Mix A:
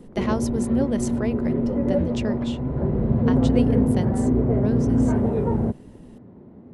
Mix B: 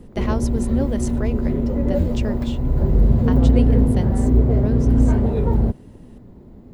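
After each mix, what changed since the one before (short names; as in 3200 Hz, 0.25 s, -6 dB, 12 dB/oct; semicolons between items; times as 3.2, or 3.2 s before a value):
background: remove BPF 120–2100 Hz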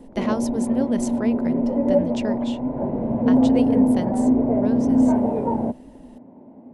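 background: add speaker cabinet 260–2200 Hz, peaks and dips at 260 Hz +9 dB, 390 Hz -5 dB, 620 Hz +8 dB, 880 Hz +8 dB, 1300 Hz -8 dB, 1800 Hz -7 dB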